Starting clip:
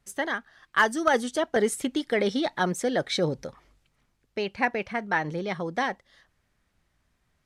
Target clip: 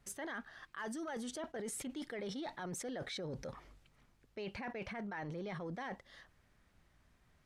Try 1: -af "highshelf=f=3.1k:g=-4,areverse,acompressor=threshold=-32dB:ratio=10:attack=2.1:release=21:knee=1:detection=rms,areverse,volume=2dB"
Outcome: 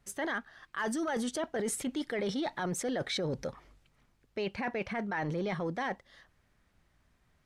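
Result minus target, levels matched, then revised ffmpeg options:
compressor: peak gain reduction -9.5 dB
-af "highshelf=f=3.1k:g=-4,areverse,acompressor=threshold=-42.5dB:ratio=10:attack=2.1:release=21:knee=1:detection=rms,areverse,volume=2dB"

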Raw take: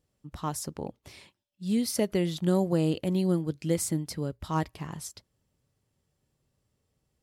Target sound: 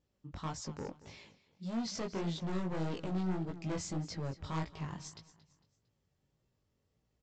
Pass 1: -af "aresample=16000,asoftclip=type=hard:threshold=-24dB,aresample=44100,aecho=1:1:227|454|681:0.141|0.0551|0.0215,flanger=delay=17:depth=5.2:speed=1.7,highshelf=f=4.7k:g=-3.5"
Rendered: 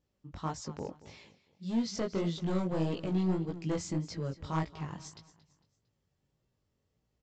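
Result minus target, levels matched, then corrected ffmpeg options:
hard clip: distortion -5 dB
-af "aresample=16000,asoftclip=type=hard:threshold=-31dB,aresample=44100,aecho=1:1:227|454|681:0.141|0.0551|0.0215,flanger=delay=17:depth=5.2:speed=1.7,highshelf=f=4.7k:g=-3.5"

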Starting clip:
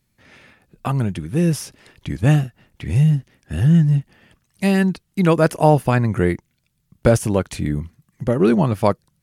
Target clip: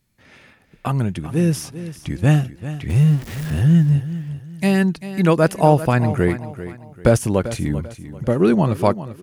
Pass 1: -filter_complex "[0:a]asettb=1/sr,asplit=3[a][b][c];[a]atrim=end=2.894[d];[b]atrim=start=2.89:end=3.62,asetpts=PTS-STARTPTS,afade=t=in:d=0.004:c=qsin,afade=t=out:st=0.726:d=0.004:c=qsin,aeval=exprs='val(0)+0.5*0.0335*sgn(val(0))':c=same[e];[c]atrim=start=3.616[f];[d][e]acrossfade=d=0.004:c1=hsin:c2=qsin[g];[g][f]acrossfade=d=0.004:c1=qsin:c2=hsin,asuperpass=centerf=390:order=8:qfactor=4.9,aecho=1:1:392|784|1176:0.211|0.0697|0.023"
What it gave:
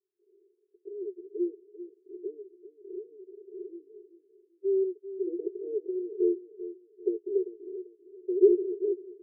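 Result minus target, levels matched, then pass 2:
500 Hz band +4.5 dB
-filter_complex "[0:a]asettb=1/sr,asplit=3[a][b][c];[a]atrim=end=2.894[d];[b]atrim=start=2.89:end=3.62,asetpts=PTS-STARTPTS,afade=t=in:d=0.004:c=qsin,afade=t=out:st=0.726:d=0.004:c=qsin,aeval=exprs='val(0)+0.5*0.0335*sgn(val(0))':c=same[e];[c]atrim=start=3.616[f];[d][e]acrossfade=d=0.004:c1=hsin:c2=qsin[g];[g][f]acrossfade=d=0.004:c1=qsin:c2=hsin,aecho=1:1:392|784|1176:0.211|0.0697|0.023"

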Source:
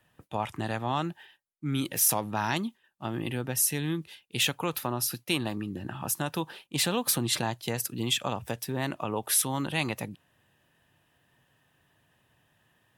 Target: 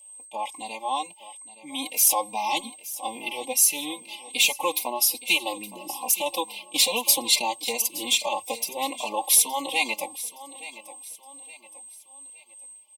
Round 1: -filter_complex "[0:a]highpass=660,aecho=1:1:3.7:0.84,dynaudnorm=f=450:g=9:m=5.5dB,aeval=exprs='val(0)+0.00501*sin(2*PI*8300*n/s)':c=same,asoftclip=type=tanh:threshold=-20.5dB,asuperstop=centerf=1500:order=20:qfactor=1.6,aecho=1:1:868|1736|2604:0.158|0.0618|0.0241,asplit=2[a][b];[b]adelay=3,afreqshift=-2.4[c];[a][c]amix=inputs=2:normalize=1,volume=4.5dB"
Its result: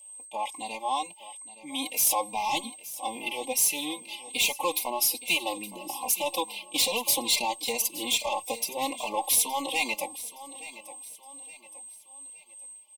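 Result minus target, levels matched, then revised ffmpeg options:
soft clip: distortion +12 dB
-filter_complex "[0:a]highpass=660,aecho=1:1:3.7:0.84,dynaudnorm=f=450:g=9:m=5.5dB,aeval=exprs='val(0)+0.00501*sin(2*PI*8300*n/s)':c=same,asoftclip=type=tanh:threshold=-9.5dB,asuperstop=centerf=1500:order=20:qfactor=1.6,aecho=1:1:868|1736|2604:0.158|0.0618|0.0241,asplit=2[a][b];[b]adelay=3,afreqshift=-2.4[c];[a][c]amix=inputs=2:normalize=1,volume=4.5dB"

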